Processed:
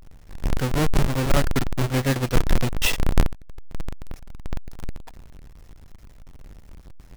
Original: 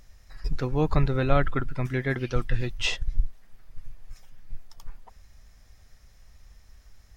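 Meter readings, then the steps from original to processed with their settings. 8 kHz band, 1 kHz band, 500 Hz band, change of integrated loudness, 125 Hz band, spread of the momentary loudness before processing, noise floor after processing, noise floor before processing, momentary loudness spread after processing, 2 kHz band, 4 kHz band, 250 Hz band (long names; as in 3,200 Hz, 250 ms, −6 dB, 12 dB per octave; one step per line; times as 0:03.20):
can't be measured, +3.0 dB, +1.5 dB, +3.5 dB, +4.0 dB, 10 LU, −47 dBFS, −55 dBFS, 18 LU, +3.0 dB, +5.0 dB, +4.5 dB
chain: each half-wave held at its own peak
speech leveller 0.5 s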